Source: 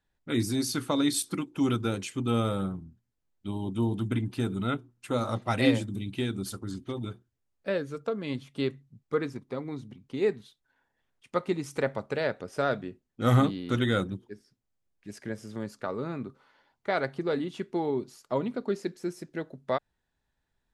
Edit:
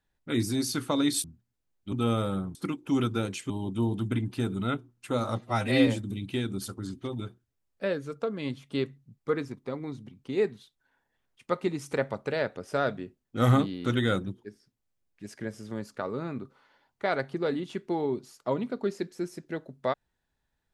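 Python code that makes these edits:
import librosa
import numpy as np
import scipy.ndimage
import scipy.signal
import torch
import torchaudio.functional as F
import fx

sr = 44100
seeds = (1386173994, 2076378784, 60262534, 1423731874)

y = fx.edit(x, sr, fx.swap(start_s=1.24, length_s=0.95, other_s=2.82, other_length_s=0.68),
    fx.stretch_span(start_s=5.41, length_s=0.31, factor=1.5), tone=tone)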